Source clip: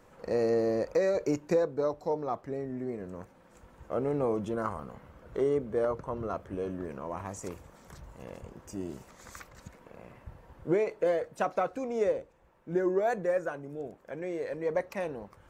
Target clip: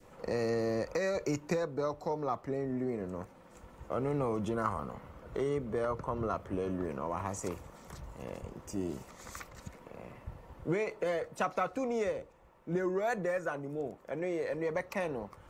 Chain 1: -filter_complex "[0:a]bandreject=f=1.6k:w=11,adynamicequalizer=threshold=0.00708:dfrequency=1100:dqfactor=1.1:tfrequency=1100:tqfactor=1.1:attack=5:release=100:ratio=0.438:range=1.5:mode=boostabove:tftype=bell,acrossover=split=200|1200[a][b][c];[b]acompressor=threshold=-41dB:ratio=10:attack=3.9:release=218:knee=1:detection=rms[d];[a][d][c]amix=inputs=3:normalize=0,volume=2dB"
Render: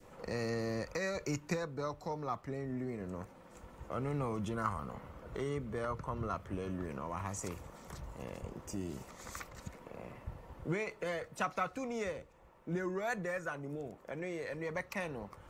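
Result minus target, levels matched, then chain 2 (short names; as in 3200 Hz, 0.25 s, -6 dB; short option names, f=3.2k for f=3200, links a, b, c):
compressor: peak gain reduction +8 dB
-filter_complex "[0:a]bandreject=f=1.6k:w=11,adynamicequalizer=threshold=0.00708:dfrequency=1100:dqfactor=1.1:tfrequency=1100:tqfactor=1.1:attack=5:release=100:ratio=0.438:range=1.5:mode=boostabove:tftype=bell,acrossover=split=200|1200[a][b][c];[b]acompressor=threshold=-32dB:ratio=10:attack=3.9:release=218:knee=1:detection=rms[d];[a][d][c]amix=inputs=3:normalize=0,volume=2dB"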